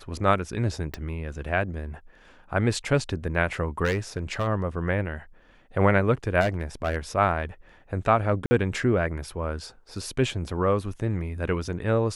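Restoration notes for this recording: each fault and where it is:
0.94 s: pop -17 dBFS
3.84–4.48 s: clipped -20.5 dBFS
6.40–6.97 s: clipped -19.5 dBFS
8.46–8.51 s: dropout 50 ms

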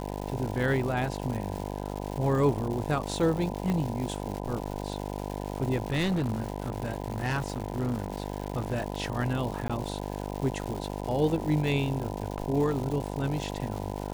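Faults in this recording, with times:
buzz 50 Hz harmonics 20 -35 dBFS
crackle 310 per s -34 dBFS
3.70 s: pop -18 dBFS
5.88–8.82 s: clipped -24 dBFS
9.68–9.70 s: dropout 16 ms

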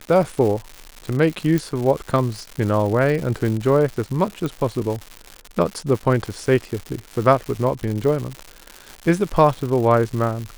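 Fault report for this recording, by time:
crackle 230 per s -26 dBFS
1.58 s: pop
4.46 s: pop

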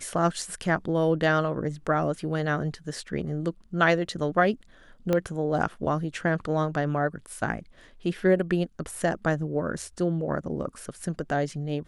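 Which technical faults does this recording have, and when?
5.13 s: pop -12 dBFS

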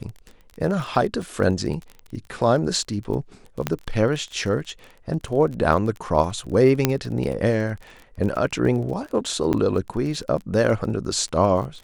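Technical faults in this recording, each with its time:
crackle 26 per s -30 dBFS
1.22 s: dropout 4.1 ms
3.67 s: pop -7 dBFS
6.85 s: pop -2 dBFS
9.53–9.54 s: dropout 8 ms

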